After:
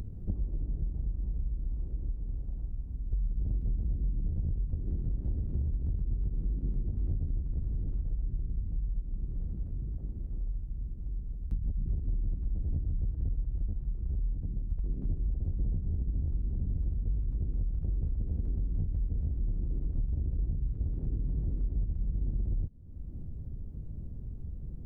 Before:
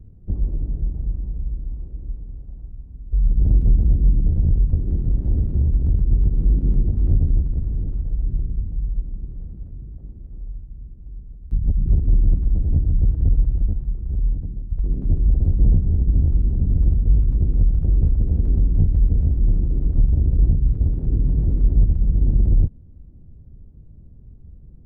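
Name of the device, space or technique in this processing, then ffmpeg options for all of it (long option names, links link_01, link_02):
upward and downward compression: -af "acompressor=mode=upward:threshold=-32dB:ratio=2.5,acompressor=threshold=-29dB:ratio=6"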